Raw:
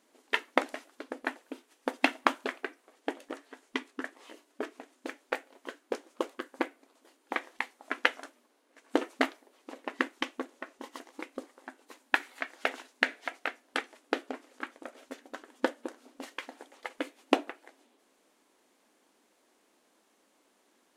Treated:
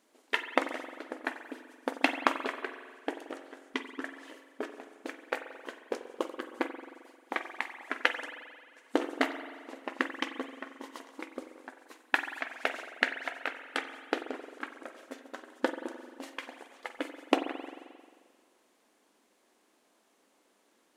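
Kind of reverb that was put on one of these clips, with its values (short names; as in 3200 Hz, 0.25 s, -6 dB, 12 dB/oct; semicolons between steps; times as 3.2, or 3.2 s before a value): spring tank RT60 1.7 s, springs 44 ms, chirp 50 ms, DRR 7.5 dB; gain -1 dB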